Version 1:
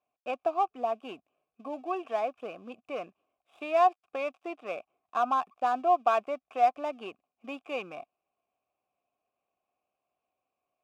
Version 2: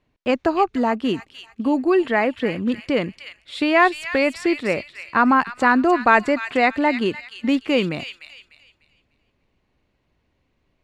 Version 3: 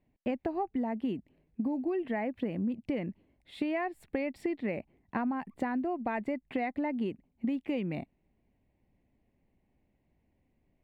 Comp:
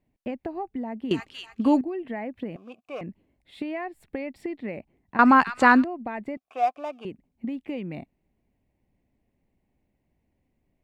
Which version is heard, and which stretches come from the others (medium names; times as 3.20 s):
3
1.11–1.81 s: from 2
2.56–3.01 s: from 1
5.19–5.84 s: from 2
6.37–7.05 s: from 1